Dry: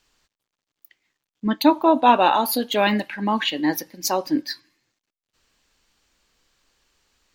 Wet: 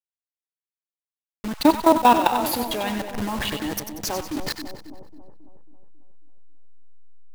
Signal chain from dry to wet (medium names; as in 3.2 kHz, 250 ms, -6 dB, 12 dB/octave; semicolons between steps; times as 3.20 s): send-on-delta sampling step -23 dBFS; level held to a coarse grid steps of 15 dB; two-band feedback delay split 860 Hz, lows 272 ms, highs 94 ms, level -8.5 dB; trim +3 dB